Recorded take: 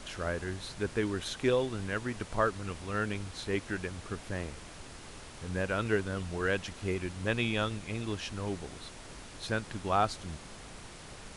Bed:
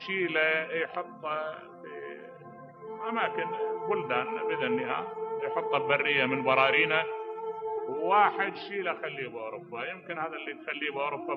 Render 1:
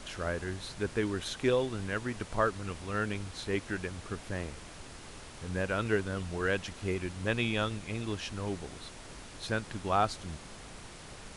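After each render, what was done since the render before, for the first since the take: no audible change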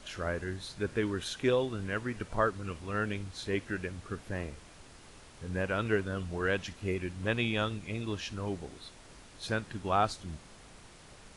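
noise print and reduce 6 dB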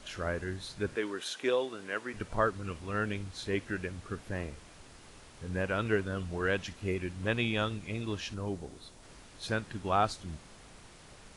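0.95–2.14 s: high-pass 350 Hz; 8.34–9.03 s: peaking EQ 2.2 kHz -5.5 dB 2 oct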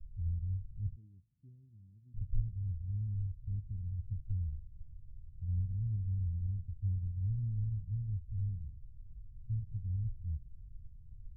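inverse Chebyshev low-pass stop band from 510 Hz, stop band 70 dB; tilt EQ -2 dB/octave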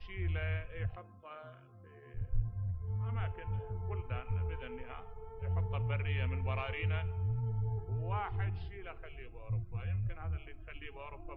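add bed -17 dB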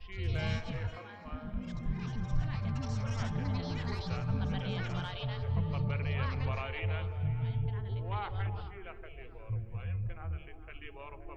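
repeats whose band climbs or falls 105 ms, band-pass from 240 Hz, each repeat 0.7 oct, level -4 dB; ever faster or slower copies 115 ms, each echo +5 st, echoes 3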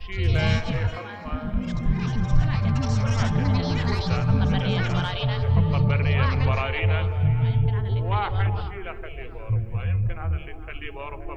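trim +12 dB

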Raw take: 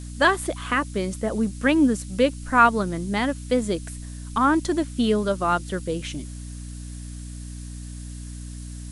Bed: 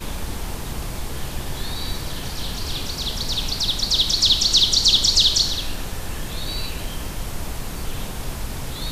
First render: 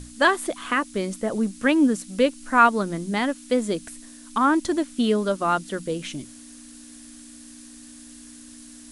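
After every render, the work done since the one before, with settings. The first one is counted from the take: hum notches 60/120/180 Hz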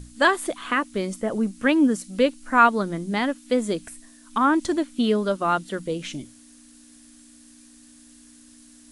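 noise print and reduce 6 dB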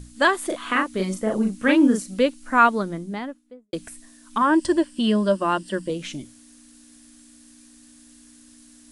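0.46–2.14 s: doubling 37 ms -3 dB; 2.68–3.73 s: studio fade out; 4.41–5.90 s: rippled EQ curve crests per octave 1.3, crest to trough 10 dB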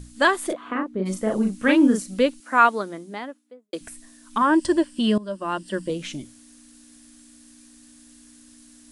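0.52–1.05 s: band-pass filter 520 Hz -> 210 Hz, Q 0.6; 2.40–3.81 s: high-pass 320 Hz; 5.18–5.82 s: fade in, from -18.5 dB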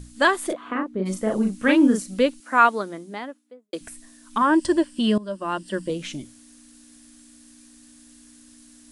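no audible change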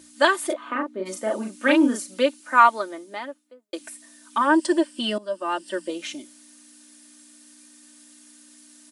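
high-pass 390 Hz 12 dB/octave; comb 3.3 ms, depth 65%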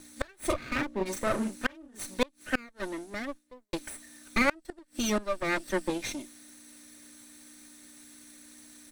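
comb filter that takes the minimum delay 0.49 ms; inverted gate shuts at -13 dBFS, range -32 dB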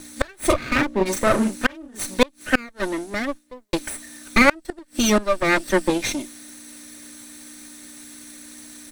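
trim +10.5 dB; peak limiter -3 dBFS, peak gain reduction 2.5 dB

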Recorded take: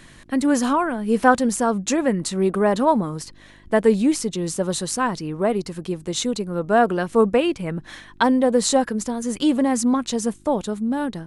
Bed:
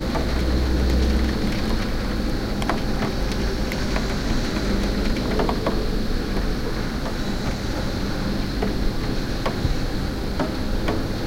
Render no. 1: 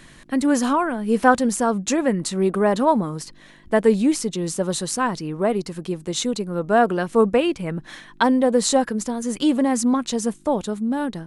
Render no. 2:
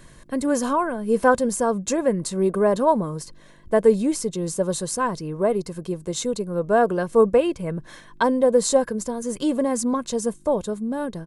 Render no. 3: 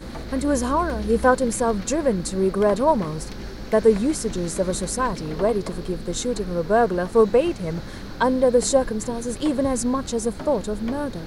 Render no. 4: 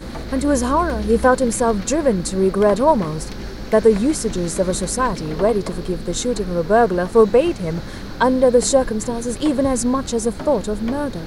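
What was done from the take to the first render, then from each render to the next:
de-hum 50 Hz, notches 2
peaking EQ 2.7 kHz -8 dB 2.1 oct; comb 1.9 ms, depth 41%
add bed -11 dB
trim +4 dB; peak limiter -3 dBFS, peak gain reduction 2.5 dB

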